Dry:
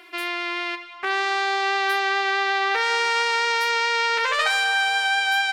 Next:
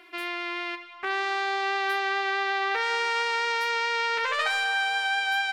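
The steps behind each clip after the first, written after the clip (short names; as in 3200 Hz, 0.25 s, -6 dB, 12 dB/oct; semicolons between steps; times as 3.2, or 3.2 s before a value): tone controls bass +5 dB, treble -4 dB; gain -4.5 dB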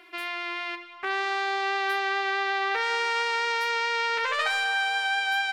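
notches 50/100/150/200/250/300/350 Hz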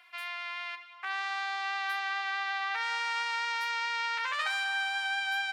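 HPF 760 Hz 24 dB/oct; gain -5 dB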